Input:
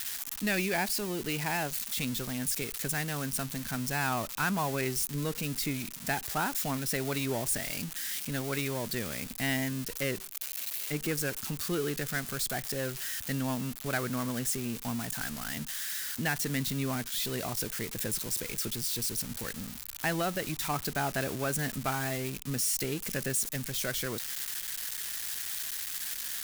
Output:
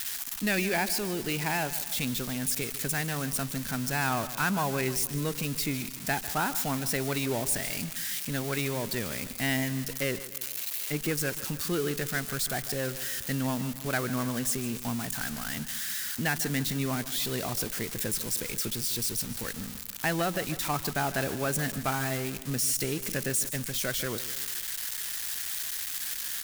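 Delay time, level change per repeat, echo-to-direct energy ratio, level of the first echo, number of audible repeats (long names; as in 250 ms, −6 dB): 150 ms, −5.5 dB, −13.5 dB, −15.0 dB, 3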